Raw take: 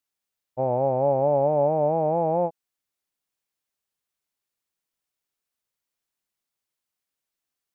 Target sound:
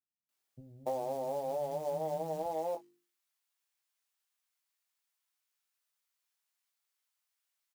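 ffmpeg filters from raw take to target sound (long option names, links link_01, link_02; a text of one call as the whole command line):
ffmpeg -i in.wav -filter_complex "[0:a]asetnsamples=nb_out_samples=441:pad=0,asendcmd='2.46 highpass f 870',highpass=150,bandreject=frequency=50:width_type=h:width=6,bandreject=frequency=100:width_type=h:width=6,bandreject=frequency=150:width_type=h:width=6,bandreject=frequency=200:width_type=h:width=6,bandreject=frequency=250:width_type=h:width=6,bandreject=frequency=300:width_type=h:width=6,bandreject=frequency=350:width_type=h:width=6,bandreject=frequency=400:width_type=h:width=6,bandreject=frequency=450:width_type=h:width=6,acompressor=threshold=-33dB:ratio=16,acrusher=bits=5:mode=log:mix=0:aa=0.000001,asplit=2[link_01][link_02];[link_02]adelay=19,volume=-6dB[link_03];[link_01][link_03]amix=inputs=2:normalize=0,acrossover=split=220[link_04][link_05];[link_05]adelay=290[link_06];[link_04][link_06]amix=inputs=2:normalize=0" out.wav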